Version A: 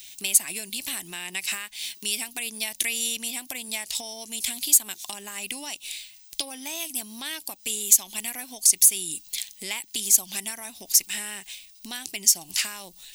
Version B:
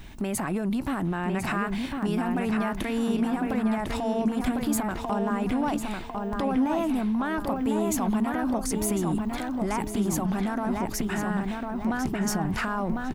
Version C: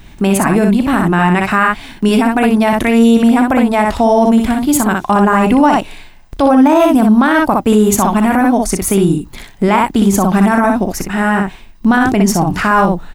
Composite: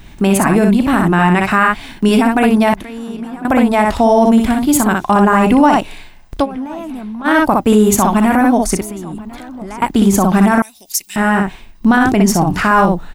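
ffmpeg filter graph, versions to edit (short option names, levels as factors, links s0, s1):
-filter_complex "[1:a]asplit=3[s0][s1][s2];[2:a]asplit=5[s3][s4][s5][s6][s7];[s3]atrim=end=2.742[s8];[s0]atrim=start=2.738:end=3.452[s9];[s4]atrim=start=3.448:end=6.46[s10];[s1]atrim=start=6.42:end=7.28[s11];[s5]atrim=start=7.24:end=8.812[s12];[s2]atrim=start=8.808:end=9.822[s13];[s6]atrim=start=9.818:end=10.622[s14];[0:a]atrim=start=10.618:end=11.162[s15];[s7]atrim=start=11.158[s16];[s8][s9]acrossfade=d=0.004:c1=hsin:c2=hsin[s17];[s17][s10]acrossfade=d=0.004:c1=hsin:c2=hsin[s18];[s18][s11]acrossfade=d=0.04:c1=tri:c2=tri[s19];[s19][s12]acrossfade=d=0.04:c1=tri:c2=tri[s20];[s20][s13]acrossfade=d=0.004:c1=hsin:c2=hsin[s21];[s21][s14]acrossfade=d=0.004:c1=hsin:c2=hsin[s22];[s22][s15]acrossfade=d=0.004:c1=hsin:c2=hsin[s23];[s23][s16]acrossfade=d=0.004:c1=hsin:c2=hsin"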